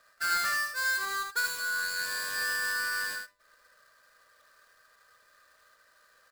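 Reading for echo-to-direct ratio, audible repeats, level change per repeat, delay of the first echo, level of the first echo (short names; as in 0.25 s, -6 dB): -4.5 dB, 1, no steady repeat, 77 ms, -4.5 dB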